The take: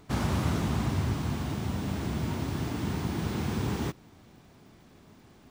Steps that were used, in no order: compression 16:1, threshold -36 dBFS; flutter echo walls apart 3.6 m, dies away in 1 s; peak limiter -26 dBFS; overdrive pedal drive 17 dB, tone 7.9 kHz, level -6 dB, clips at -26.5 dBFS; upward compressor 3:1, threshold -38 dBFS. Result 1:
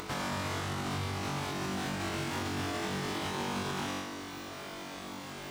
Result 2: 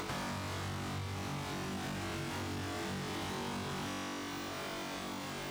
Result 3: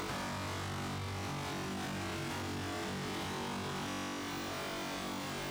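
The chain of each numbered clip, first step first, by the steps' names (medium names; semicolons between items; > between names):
compression > overdrive pedal > flutter echo > peak limiter > upward compressor; peak limiter > flutter echo > upward compressor > overdrive pedal > compression; upward compressor > flutter echo > peak limiter > overdrive pedal > compression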